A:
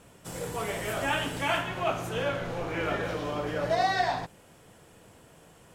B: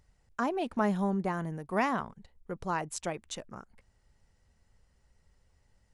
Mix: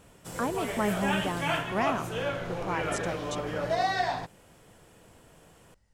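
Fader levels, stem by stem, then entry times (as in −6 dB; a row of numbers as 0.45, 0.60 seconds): −1.5, −0.5 decibels; 0.00, 0.00 seconds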